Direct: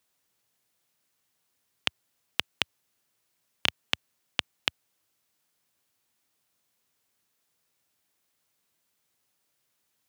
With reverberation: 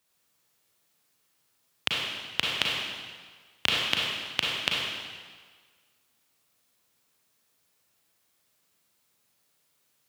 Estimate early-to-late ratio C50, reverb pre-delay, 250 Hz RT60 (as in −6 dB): −1.5 dB, 34 ms, 1.4 s